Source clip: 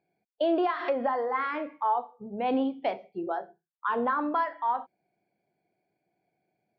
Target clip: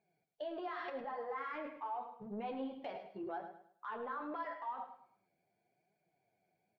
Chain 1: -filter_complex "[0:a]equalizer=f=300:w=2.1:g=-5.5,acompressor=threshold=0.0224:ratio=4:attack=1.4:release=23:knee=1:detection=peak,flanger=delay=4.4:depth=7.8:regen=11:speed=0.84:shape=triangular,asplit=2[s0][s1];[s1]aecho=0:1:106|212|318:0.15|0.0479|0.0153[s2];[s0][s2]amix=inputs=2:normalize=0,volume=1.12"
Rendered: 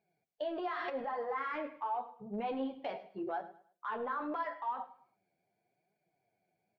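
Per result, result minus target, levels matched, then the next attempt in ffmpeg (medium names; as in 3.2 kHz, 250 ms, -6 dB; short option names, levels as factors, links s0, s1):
compression: peak gain reduction -5.5 dB; echo-to-direct -6.5 dB
-filter_complex "[0:a]equalizer=f=300:w=2.1:g=-5.5,acompressor=threshold=0.01:ratio=4:attack=1.4:release=23:knee=1:detection=peak,flanger=delay=4.4:depth=7.8:regen=11:speed=0.84:shape=triangular,asplit=2[s0][s1];[s1]aecho=0:1:106|212|318:0.15|0.0479|0.0153[s2];[s0][s2]amix=inputs=2:normalize=0,volume=1.12"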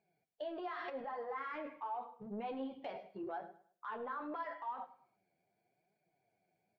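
echo-to-direct -6.5 dB
-filter_complex "[0:a]equalizer=f=300:w=2.1:g=-5.5,acompressor=threshold=0.01:ratio=4:attack=1.4:release=23:knee=1:detection=peak,flanger=delay=4.4:depth=7.8:regen=11:speed=0.84:shape=triangular,asplit=2[s0][s1];[s1]aecho=0:1:106|212|318|424:0.316|0.101|0.0324|0.0104[s2];[s0][s2]amix=inputs=2:normalize=0,volume=1.12"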